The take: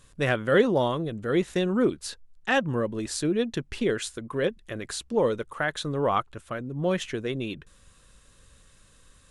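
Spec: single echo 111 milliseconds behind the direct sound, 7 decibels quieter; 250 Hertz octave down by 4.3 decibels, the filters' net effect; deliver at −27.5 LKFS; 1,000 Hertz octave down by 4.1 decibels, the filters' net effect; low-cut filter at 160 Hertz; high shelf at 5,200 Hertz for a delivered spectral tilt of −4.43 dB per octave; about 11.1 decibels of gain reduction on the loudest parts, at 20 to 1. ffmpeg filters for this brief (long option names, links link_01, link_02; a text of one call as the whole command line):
ffmpeg -i in.wav -af "highpass=160,equalizer=frequency=250:width_type=o:gain=-4.5,equalizer=frequency=1000:width_type=o:gain=-5,highshelf=frequency=5200:gain=-5.5,acompressor=threshold=-28dB:ratio=20,aecho=1:1:111:0.447,volume=7dB" out.wav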